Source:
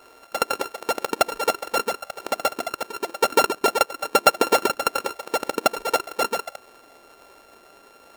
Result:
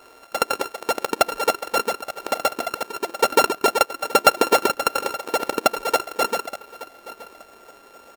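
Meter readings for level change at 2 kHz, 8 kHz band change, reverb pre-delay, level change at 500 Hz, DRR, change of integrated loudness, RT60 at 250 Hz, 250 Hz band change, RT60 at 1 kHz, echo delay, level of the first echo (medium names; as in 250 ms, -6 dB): +1.5 dB, +1.5 dB, no reverb, +1.5 dB, no reverb, +1.5 dB, no reverb, +1.5 dB, no reverb, 873 ms, -17.5 dB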